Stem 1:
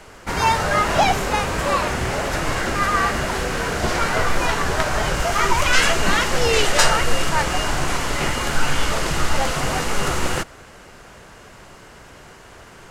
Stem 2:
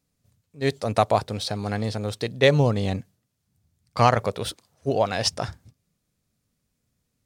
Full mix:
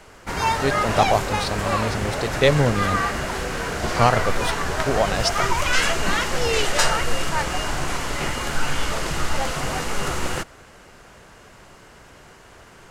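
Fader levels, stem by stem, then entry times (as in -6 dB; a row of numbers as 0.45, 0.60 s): -3.5, +0.5 dB; 0.00, 0.00 s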